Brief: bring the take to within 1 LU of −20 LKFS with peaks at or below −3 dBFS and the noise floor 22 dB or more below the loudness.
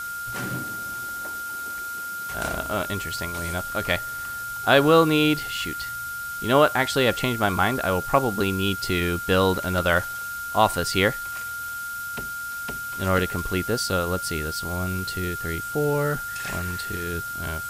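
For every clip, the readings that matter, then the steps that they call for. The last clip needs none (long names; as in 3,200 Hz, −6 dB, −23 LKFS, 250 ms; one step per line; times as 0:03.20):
interfering tone 1,400 Hz; level of the tone −30 dBFS; background noise floor −32 dBFS; target noise floor −47 dBFS; integrated loudness −24.5 LKFS; sample peak −2.5 dBFS; target loudness −20.0 LKFS
→ notch filter 1,400 Hz, Q 30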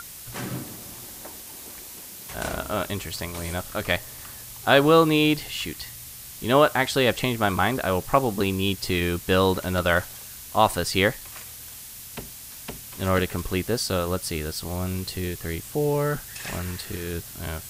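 interfering tone none found; background noise floor −41 dBFS; target noise floor −47 dBFS
→ broadband denoise 6 dB, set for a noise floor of −41 dBFS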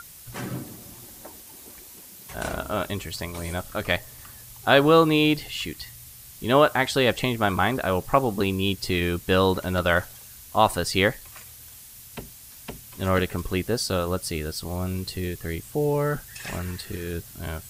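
background noise floor −46 dBFS; target noise floor −47 dBFS
→ broadband denoise 6 dB, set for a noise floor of −46 dBFS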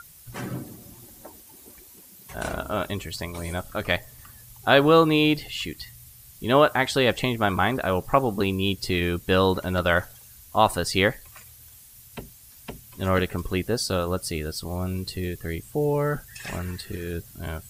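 background noise floor −49 dBFS; integrated loudness −24.5 LKFS; sample peak −3.0 dBFS; target loudness −20.0 LKFS
→ level +4.5 dB
brickwall limiter −3 dBFS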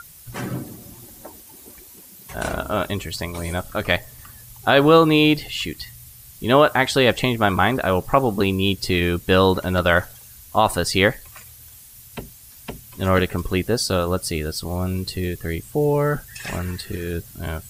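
integrated loudness −20.5 LKFS; sample peak −3.0 dBFS; background noise floor −45 dBFS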